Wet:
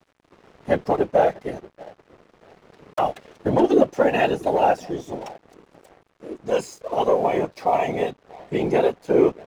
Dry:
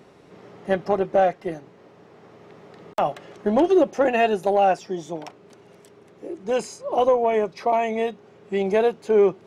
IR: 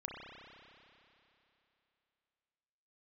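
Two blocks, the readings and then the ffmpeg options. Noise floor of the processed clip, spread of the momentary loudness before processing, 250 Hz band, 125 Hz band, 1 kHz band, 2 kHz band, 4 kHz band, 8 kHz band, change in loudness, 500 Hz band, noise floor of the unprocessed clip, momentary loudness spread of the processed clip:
−64 dBFS, 15 LU, +1.5 dB, +4.5 dB, 0.0 dB, 0.0 dB, +0.5 dB, can't be measured, +0.5 dB, 0.0 dB, −51 dBFS, 16 LU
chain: -filter_complex "[0:a]asplit=2[link_01][link_02];[link_02]adelay=640,lowpass=frequency=910:poles=1,volume=-19dB,asplit=2[link_03][link_04];[link_04]adelay=640,lowpass=frequency=910:poles=1,volume=0.37,asplit=2[link_05][link_06];[link_06]adelay=640,lowpass=frequency=910:poles=1,volume=0.37[link_07];[link_01][link_03][link_05][link_07]amix=inputs=4:normalize=0,afftfilt=real='hypot(re,im)*cos(2*PI*random(0))':imag='hypot(re,im)*sin(2*PI*random(1))':win_size=512:overlap=0.75,aeval=exprs='sgn(val(0))*max(abs(val(0))-0.00224,0)':channel_layout=same,volume=6.5dB"

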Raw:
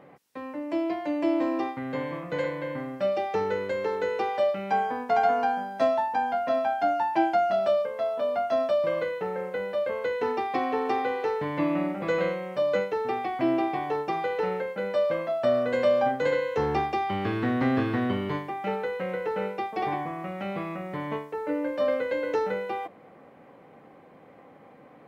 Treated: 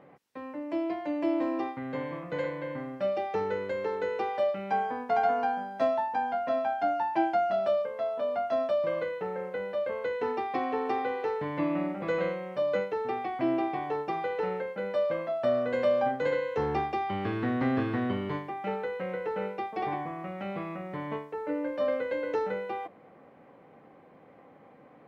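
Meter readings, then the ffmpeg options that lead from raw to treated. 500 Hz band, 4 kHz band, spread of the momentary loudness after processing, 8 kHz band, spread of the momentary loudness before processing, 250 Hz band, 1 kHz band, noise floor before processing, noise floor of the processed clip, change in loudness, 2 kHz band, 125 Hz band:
−3.0 dB, −5.5 dB, 8 LU, can't be measured, 8 LU, −3.0 dB, −3.0 dB, −52 dBFS, −55 dBFS, −3.0 dB, −4.0 dB, −3.0 dB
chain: -af "highshelf=frequency=5400:gain=-8.5,volume=-3dB"

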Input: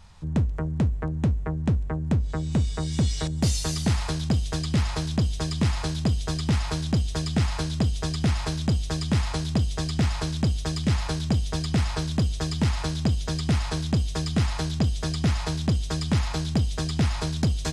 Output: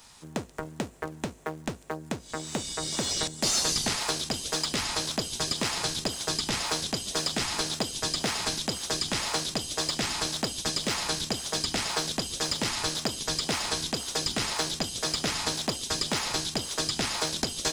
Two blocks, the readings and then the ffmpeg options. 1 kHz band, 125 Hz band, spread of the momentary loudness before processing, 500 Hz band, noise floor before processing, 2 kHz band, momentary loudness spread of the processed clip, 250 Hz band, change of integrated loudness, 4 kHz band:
+1.5 dB, −16.5 dB, 1 LU, 0.0 dB, −31 dBFS, +3.0 dB, 9 LU, −8.5 dB, −2.5 dB, +6.0 dB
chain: -filter_complex "[0:a]aemphasis=mode=production:type=75kf,acrossover=split=6400[link_01][link_02];[link_02]acompressor=threshold=-37dB:ratio=4:attack=1:release=60[link_03];[link_01][link_03]amix=inputs=2:normalize=0,highpass=400,asplit=2[link_04][link_05];[link_05]acrusher=samples=42:mix=1:aa=0.000001:lfo=1:lforange=67.2:lforate=1.9,volume=-10.5dB[link_06];[link_04][link_06]amix=inputs=2:normalize=0"

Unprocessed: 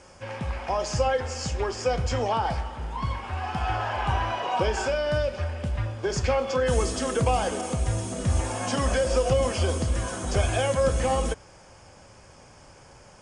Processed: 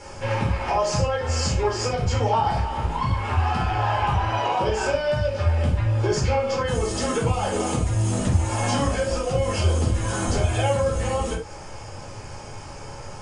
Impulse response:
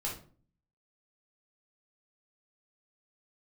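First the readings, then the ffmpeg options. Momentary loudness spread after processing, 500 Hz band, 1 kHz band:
16 LU, +1.5 dB, +4.0 dB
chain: -filter_complex "[0:a]acompressor=threshold=-32dB:ratio=6[link_01];[1:a]atrim=start_sample=2205,afade=type=out:start_time=0.15:duration=0.01,atrim=end_sample=7056[link_02];[link_01][link_02]afir=irnorm=-1:irlink=0,volume=9dB"

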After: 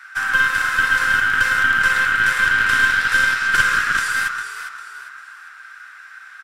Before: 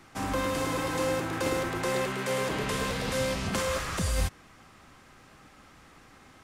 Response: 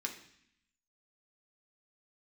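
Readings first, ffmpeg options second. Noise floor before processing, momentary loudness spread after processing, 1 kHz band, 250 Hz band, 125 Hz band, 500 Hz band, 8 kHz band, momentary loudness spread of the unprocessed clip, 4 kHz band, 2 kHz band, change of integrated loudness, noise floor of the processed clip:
−55 dBFS, 15 LU, +10.5 dB, −7.0 dB, −5.0 dB, −11.5 dB, +5.5 dB, 1 LU, +10.0 dB, +22.5 dB, +13.5 dB, −41 dBFS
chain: -filter_complex "[0:a]highpass=frequency=1500:width_type=q:width=16,asplit=5[link_01][link_02][link_03][link_04][link_05];[link_02]adelay=402,afreqshift=-55,volume=-9dB[link_06];[link_03]adelay=804,afreqshift=-110,volume=-18.1dB[link_07];[link_04]adelay=1206,afreqshift=-165,volume=-27.2dB[link_08];[link_05]adelay=1608,afreqshift=-220,volume=-36.4dB[link_09];[link_01][link_06][link_07][link_08][link_09]amix=inputs=5:normalize=0,asplit=2[link_10][link_11];[1:a]atrim=start_sample=2205[link_12];[link_11][link_12]afir=irnorm=-1:irlink=0,volume=0.5dB[link_13];[link_10][link_13]amix=inputs=2:normalize=0,aeval=exprs='0.708*(cos(1*acos(clip(val(0)/0.708,-1,1)))-cos(1*PI/2))+0.178*(cos(2*acos(clip(val(0)/0.708,-1,1)))-cos(2*PI/2))':channel_layout=same,volume=-1dB"

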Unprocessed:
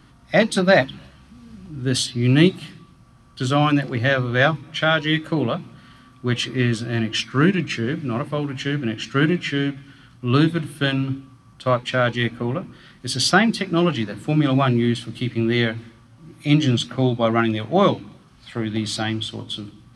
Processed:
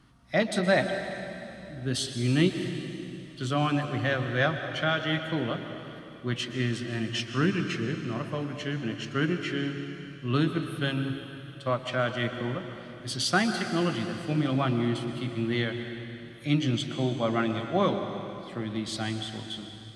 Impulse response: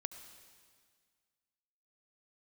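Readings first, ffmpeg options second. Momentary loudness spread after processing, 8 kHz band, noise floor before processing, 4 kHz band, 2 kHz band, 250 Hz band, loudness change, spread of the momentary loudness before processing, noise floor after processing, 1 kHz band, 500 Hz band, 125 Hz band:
12 LU, −7.5 dB, −51 dBFS, −8.0 dB, −8.0 dB, −8.0 dB, −8.5 dB, 12 LU, −45 dBFS, −8.0 dB, −7.5 dB, −8.0 dB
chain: -filter_complex "[1:a]atrim=start_sample=2205,asetrate=26019,aresample=44100[link_01];[0:a][link_01]afir=irnorm=-1:irlink=0,volume=-8.5dB"

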